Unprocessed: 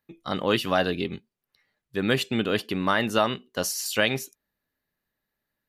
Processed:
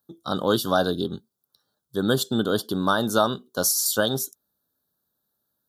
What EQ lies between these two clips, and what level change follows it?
high-pass filter 73 Hz
elliptic band-stop filter 1,500–3,400 Hz, stop band 80 dB
high-shelf EQ 7,500 Hz +10.5 dB
+2.5 dB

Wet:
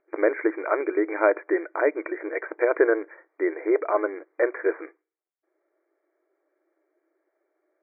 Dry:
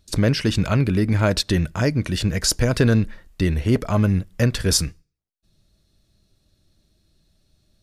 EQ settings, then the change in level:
linear-phase brick-wall band-pass 310–2,400 Hz
high-frequency loss of the air 480 metres
+4.5 dB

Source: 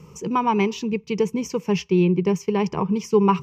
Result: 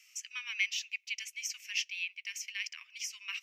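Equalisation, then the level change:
Butterworth high-pass 1,800 Hz 48 dB per octave
0.0 dB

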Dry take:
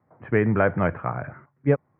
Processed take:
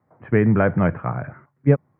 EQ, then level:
dynamic equaliser 160 Hz, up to +7 dB, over −36 dBFS, Q 0.71
0.0 dB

